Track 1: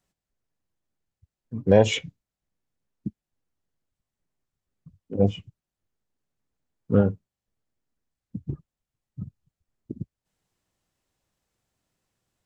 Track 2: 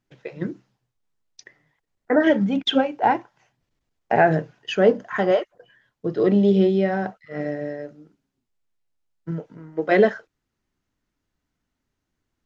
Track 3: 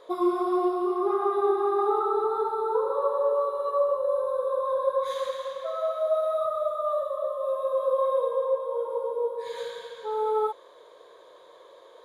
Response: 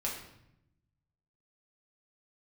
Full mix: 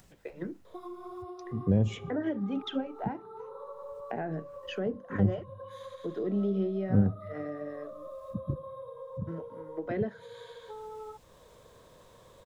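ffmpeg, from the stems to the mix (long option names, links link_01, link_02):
-filter_complex "[0:a]lowshelf=frequency=330:gain=6.5,acompressor=mode=upward:threshold=-35dB:ratio=2.5,volume=-7.5dB,asplit=2[link_01][link_02];[link_02]volume=-23dB[link_03];[1:a]highpass=230,highshelf=frequency=2500:gain=-8,volume=-6dB[link_04];[2:a]acompressor=threshold=-35dB:ratio=6,adelay=650,volume=-6.5dB[link_05];[3:a]atrim=start_sample=2205[link_06];[link_03][link_06]afir=irnorm=-1:irlink=0[link_07];[link_01][link_04][link_05][link_07]amix=inputs=4:normalize=0,acrossover=split=280[link_08][link_09];[link_09]acompressor=threshold=-36dB:ratio=6[link_10];[link_08][link_10]amix=inputs=2:normalize=0"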